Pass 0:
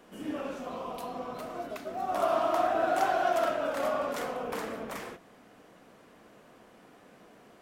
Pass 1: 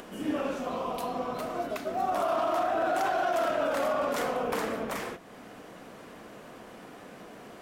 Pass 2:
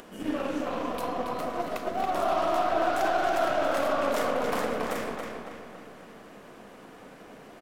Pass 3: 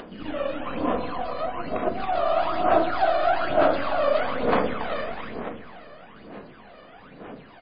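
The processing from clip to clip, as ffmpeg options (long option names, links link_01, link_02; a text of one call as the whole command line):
ffmpeg -i in.wav -af "alimiter=level_in=1dB:limit=-24dB:level=0:latency=1:release=37,volume=-1dB,acompressor=mode=upward:threshold=-45dB:ratio=2.5,volume=5dB" out.wav
ffmpeg -i in.wav -filter_complex "[0:a]aeval=exprs='0.106*(cos(1*acos(clip(val(0)/0.106,-1,1)))-cos(1*PI/2))+0.00596*(cos(6*acos(clip(val(0)/0.106,-1,1)))-cos(6*PI/2))+0.00473*(cos(7*acos(clip(val(0)/0.106,-1,1)))-cos(7*PI/2))':channel_layout=same,asplit=2[link_01][link_02];[link_02]adelay=277,lowpass=frequency=4900:poles=1,volume=-3.5dB,asplit=2[link_03][link_04];[link_04]adelay=277,lowpass=frequency=4900:poles=1,volume=0.51,asplit=2[link_05][link_06];[link_06]adelay=277,lowpass=frequency=4900:poles=1,volume=0.51,asplit=2[link_07][link_08];[link_08]adelay=277,lowpass=frequency=4900:poles=1,volume=0.51,asplit=2[link_09][link_10];[link_10]adelay=277,lowpass=frequency=4900:poles=1,volume=0.51,asplit=2[link_11][link_12];[link_12]adelay=277,lowpass=frequency=4900:poles=1,volume=0.51,asplit=2[link_13][link_14];[link_14]adelay=277,lowpass=frequency=4900:poles=1,volume=0.51[link_15];[link_01][link_03][link_05][link_07][link_09][link_11][link_13][link_15]amix=inputs=8:normalize=0" out.wav
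ffmpeg -i in.wav -af "aphaser=in_gain=1:out_gain=1:delay=1.7:decay=0.66:speed=1.1:type=sinusoidal" -ar 11025 -c:a libmp3lame -b:a 16k out.mp3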